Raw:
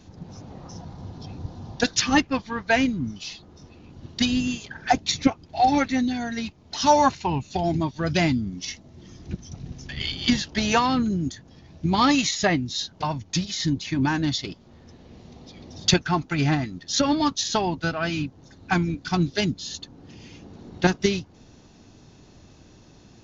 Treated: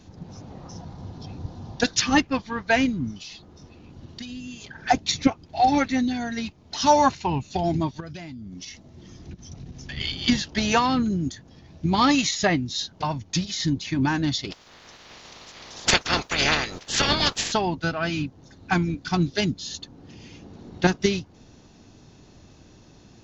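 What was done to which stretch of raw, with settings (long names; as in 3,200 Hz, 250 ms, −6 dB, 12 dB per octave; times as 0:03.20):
0:03.19–0:04.81: downward compressor 4 to 1, threshold −36 dBFS
0:08.00–0:09.89: downward compressor 20 to 1, threshold −34 dBFS
0:14.50–0:17.51: ceiling on every frequency bin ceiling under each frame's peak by 29 dB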